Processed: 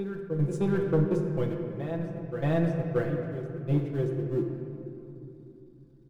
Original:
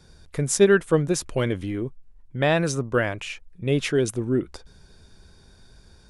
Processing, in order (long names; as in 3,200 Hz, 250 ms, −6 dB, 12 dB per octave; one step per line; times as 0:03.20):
converter with a step at zero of −26.5 dBFS
downward compressor 1.5 to 1, threshold −27 dBFS, peak gain reduction 6 dB
noise gate −23 dBFS, range −35 dB
tilt shelving filter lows +4.5 dB, about 710 Hz
comb filter 5.9 ms, depth 75%
backwards echo 627 ms −8.5 dB
hard clipping −13 dBFS, distortion −17 dB
high-shelf EQ 2,400 Hz −10 dB
hum removal 89.97 Hz, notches 30
on a send at −3 dB: convolution reverb RT60 3.0 s, pre-delay 6 ms
on the sum: level that may rise only so fast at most 380 dB per second
level −6.5 dB